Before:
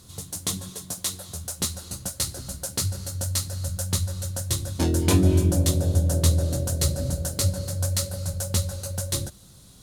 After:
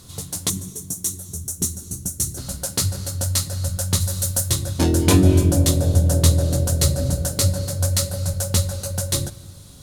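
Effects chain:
0:00.49–0:02.38: gain on a spectral selection 440–5,400 Hz −14 dB
0:04.00–0:04.49: high-shelf EQ 5,100 Hz → 7,700 Hz +11 dB
rectangular room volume 2,800 cubic metres, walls mixed, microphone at 0.34 metres
level +5 dB

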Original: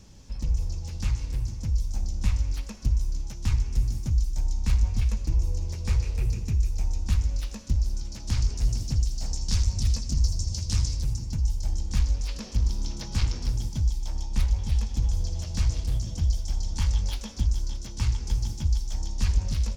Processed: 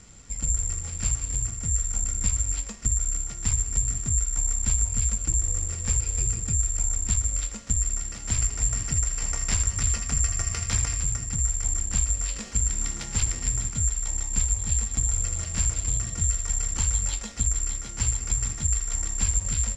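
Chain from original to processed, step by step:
bad sample-rate conversion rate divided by 6×, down none, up zero stuff
low-pass filter 6,600 Hz 24 dB per octave
downward compressor 3 to 1, threshold −17 dBFS, peak gain reduction 4 dB
level −1.5 dB

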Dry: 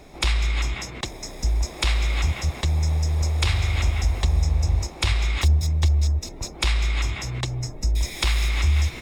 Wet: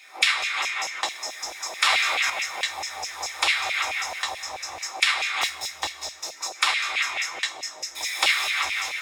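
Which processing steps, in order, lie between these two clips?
coupled-rooms reverb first 0.21 s, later 1.6 s, from −18 dB, DRR −1 dB
auto-filter high-pass saw down 4.6 Hz 640–2,600 Hz
0:01.77–0:02.30: level that may fall only so fast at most 23 dB per second

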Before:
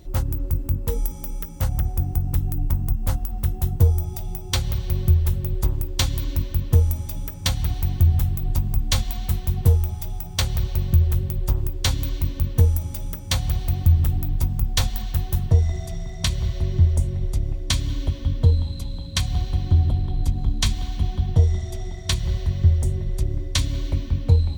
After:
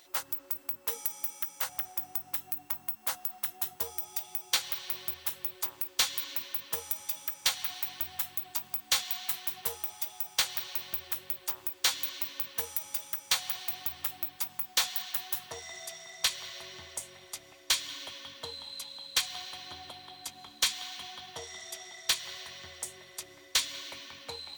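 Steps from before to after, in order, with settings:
high-pass filter 1,200 Hz 12 dB per octave
hard clipping −22.5 dBFS, distortion −8 dB
level +2.5 dB

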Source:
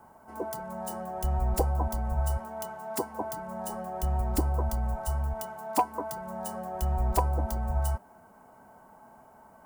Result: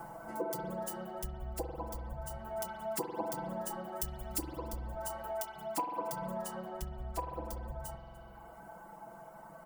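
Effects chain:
0:05.07–0:05.56: high-pass filter 370 Hz 12 dB per octave
0:06.42–0:07.19: high-shelf EQ 9,000 Hz −6 dB
single-tap delay 294 ms −22 dB
speech leveller 0.5 s
reverb reduction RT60 0.96 s
0:03.92–0:04.57: high-shelf EQ 2,300 Hz +11.5 dB
spring reverb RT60 1.6 s, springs 46 ms, chirp 25 ms, DRR 4 dB
downward compressor 2 to 1, threshold −52 dBFS, peak gain reduction 17 dB
comb filter 6 ms, depth 91%
level +4 dB

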